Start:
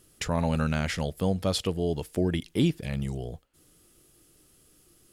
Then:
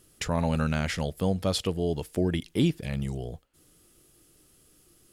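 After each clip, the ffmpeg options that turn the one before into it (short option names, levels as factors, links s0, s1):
-af anull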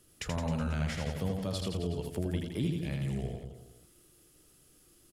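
-filter_complex "[0:a]acrossover=split=160[s0][s1];[s1]acompressor=threshold=0.0224:ratio=3[s2];[s0][s2]amix=inputs=2:normalize=0,aecho=1:1:80|168|264.8|371.3|488.4:0.631|0.398|0.251|0.158|0.1,volume=0.631"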